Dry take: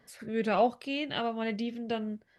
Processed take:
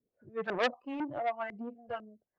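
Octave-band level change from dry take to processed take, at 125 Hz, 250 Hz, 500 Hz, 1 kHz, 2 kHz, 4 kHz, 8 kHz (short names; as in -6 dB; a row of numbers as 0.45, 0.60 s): -9.5 dB, -8.0 dB, -4.5 dB, -4.0 dB, 0.0 dB, -6.5 dB, n/a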